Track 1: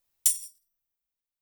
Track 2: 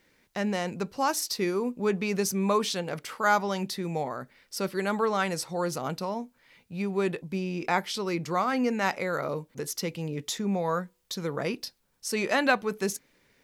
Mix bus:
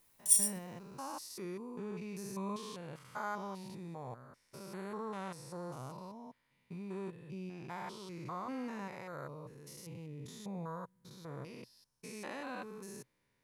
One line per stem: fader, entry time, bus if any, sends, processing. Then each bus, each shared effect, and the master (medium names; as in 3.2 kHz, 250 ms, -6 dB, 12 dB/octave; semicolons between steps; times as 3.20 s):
+0.5 dB, 0.00 s, no send, compressor with a negative ratio -29 dBFS, ratio -0.5
-14.5 dB, 0.00 s, no send, spectrogram pixelated in time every 200 ms; bass shelf 220 Hz +4.5 dB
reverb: none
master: graphic EQ with 31 bands 125 Hz +7 dB, 1 kHz +8 dB, 10 kHz +7 dB